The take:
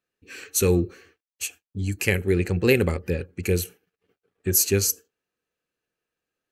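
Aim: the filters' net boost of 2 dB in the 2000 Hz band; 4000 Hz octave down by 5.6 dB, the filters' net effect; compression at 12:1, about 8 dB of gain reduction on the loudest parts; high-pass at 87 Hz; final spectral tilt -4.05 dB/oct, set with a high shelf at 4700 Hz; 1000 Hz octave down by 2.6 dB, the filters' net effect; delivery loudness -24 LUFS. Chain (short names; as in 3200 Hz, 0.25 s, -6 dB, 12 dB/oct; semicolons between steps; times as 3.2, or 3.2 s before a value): HPF 87 Hz; bell 1000 Hz -5 dB; bell 2000 Hz +6.5 dB; bell 4000 Hz -7.5 dB; high shelf 4700 Hz -3 dB; compressor 12:1, threshold -22 dBFS; gain +5.5 dB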